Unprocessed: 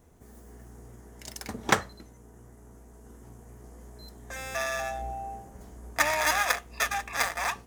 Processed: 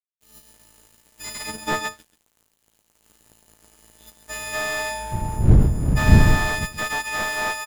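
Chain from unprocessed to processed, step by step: partials quantised in pitch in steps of 6 st; 5.11–6.64 s: wind noise 110 Hz -16 dBFS; in parallel at -1 dB: compression, threshold -23 dBFS, peak gain reduction 18.5 dB; on the sum: valve stage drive 2 dB, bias 0.25; crossover distortion -37 dBFS; on a send: delay 133 ms -11.5 dB; on the sum: slew-rate limiter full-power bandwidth 180 Hz; trim -1 dB

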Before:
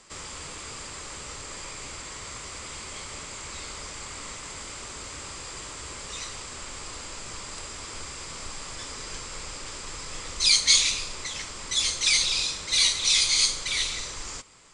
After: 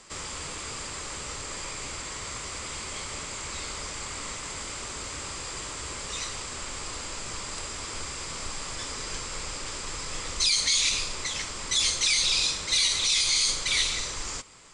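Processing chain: peak limiter -16.5 dBFS, peak gain reduction 10.5 dB; trim +2.5 dB

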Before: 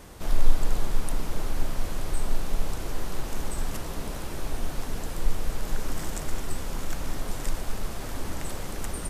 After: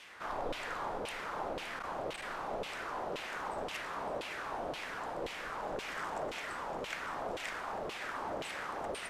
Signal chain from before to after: 1.66–2.27 s: overload inside the chain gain 17.5 dB; LFO band-pass saw down 1.9 Hz 490–3000 Hz; two-band feedback delay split 1.6 kHz, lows 215 ms, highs 568 ms, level -12.5 dB; trim +7.5 dB

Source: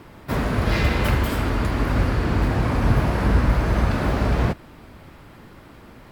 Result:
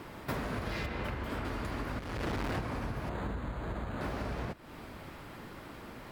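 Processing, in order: 0.86–1.45 s: treble shelf 4.7 kHz -11.5 dB; 1.99–2.58 s: overload inside the chain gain 26.5 dB; compression 10:1, threshold -30 dBFS, peak gain reduction 17.5 dB; bass shelf 190 Hz -6 dB; 3.09–4.01 s: decimation joined by straight lines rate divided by 8×

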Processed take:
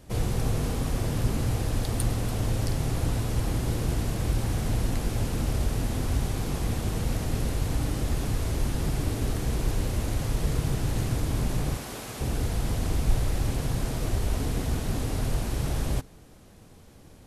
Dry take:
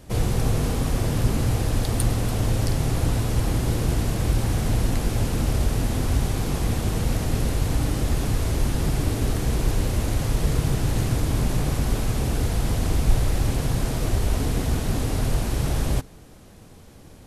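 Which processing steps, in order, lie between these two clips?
11.77–12.21 s: high-pass 500 Hz 6 dB/octave; trim -4.5 dB

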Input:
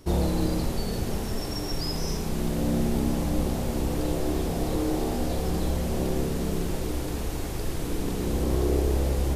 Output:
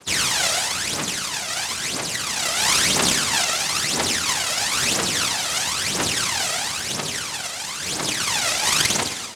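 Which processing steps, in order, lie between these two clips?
tape stop on the ending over 0.82 s; comb 4 ms, depth 92%; noise-vocoded speech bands 1; phaser 1 Hz, delay 1.6 ms, feedback 70%; gated-style reverb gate 460 ms falling, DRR 8 dB

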